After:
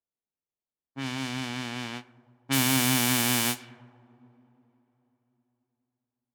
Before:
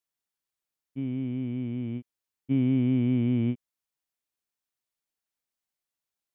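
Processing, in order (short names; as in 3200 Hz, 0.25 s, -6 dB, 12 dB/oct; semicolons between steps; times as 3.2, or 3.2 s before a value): spectral whitening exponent 0.1; two-slope reverb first 0.21 s, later 3.9 s, from -19 dB, DRR 11 dB; low-pass opened by the level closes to 700 Hz, open at -22 dBFS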